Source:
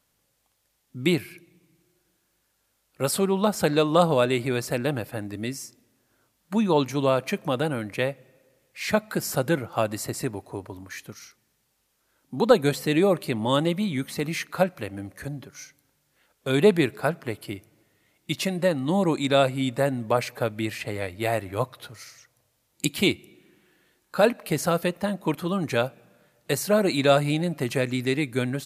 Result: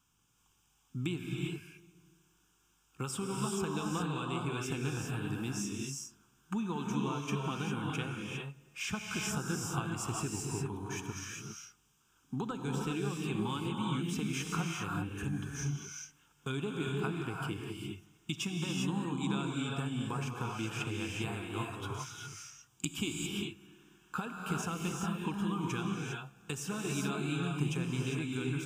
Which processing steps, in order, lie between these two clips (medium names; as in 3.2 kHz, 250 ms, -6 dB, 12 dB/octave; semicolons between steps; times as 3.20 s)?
compression 6:1, threshold -31 dBFS, peak gain reduction 18.5 dB; static phaser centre 2.9 kHz, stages 8; gated-style reverb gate 430 ms rising, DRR -1 dB